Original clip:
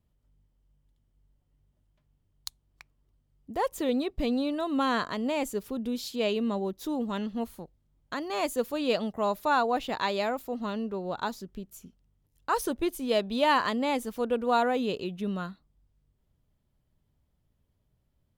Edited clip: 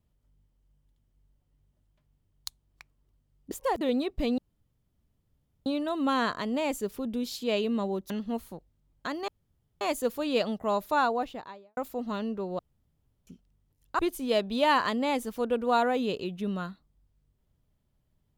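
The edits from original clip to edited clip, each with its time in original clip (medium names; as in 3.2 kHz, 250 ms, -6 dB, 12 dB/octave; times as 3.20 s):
3.51–3.81 s: reverse
4.38 s: insert room tone 1.28 s
6.82–7.17 s: delete
8.35 s: insert room tone 0.53 s
9.47–10.31 s: studio fade out
11.13–11.81 s: room tone
12.53–12.79 s: delete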